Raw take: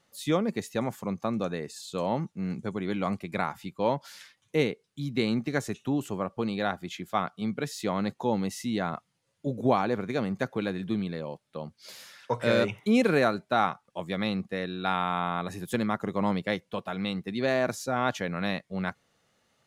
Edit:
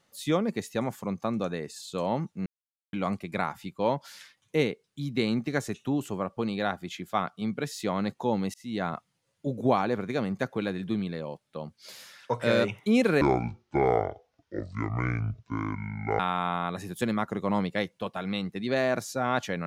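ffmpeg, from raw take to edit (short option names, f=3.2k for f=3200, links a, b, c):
-filter_complex "[0:a]asplit=6[a][b][c][d][e][f];[a]atrim=end=2.46,asetpts=PTS-STARTPTS,afade=t=out:st=2.456:d=0.004:c=hsin[g];[b]atrim=start=2.46:end=2.93,asetpts=PTS-STARTPTS,volume=0[h];[c]atrim=start=2.93:end=8.54,asetpts=PTS-STARTPTS,afade=t=in:d=0.004:c=hsin,afade=t=out:st=5.606:d=0.004:c=hsin[i];[d]atrim=start=8.54:end=13.214,asetpts=PTS-STARTPTS,afade=t=in:d=0.29[j];[e]atrim=start=13.21:end=14.91,asetpts=PTS-STARTPTS,asetrate=25137,aresample=44100,atrim=end_sample=131526,asetpts=PTS-STARTPTS[k];[f]atrim=start=14.906[l];[g][h][i][j]concat=n=4:v=0:a=1[m];[m][k]acrossfade=d=0.004:c1=hsin:c2=hsin[n];[n][l]acrossfade=d=0.004:c1=hsin:c2=hsin"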